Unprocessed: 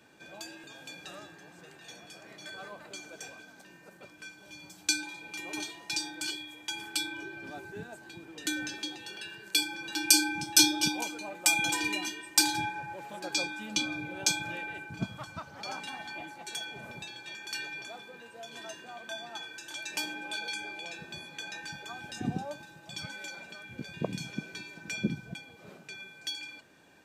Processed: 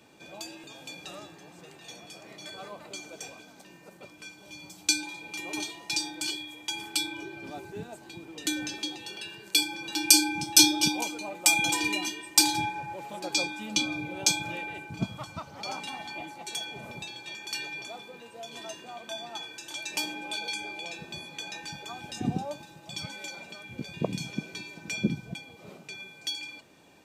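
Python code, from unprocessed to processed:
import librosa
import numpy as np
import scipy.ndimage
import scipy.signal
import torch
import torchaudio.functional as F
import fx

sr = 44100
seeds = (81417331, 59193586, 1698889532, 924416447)

y = fx.peak_eq(x, sr, hz=1600.0, db=-11.0, octaves=0.27)
y = y * 10.0 ** (3.5 / 20.0)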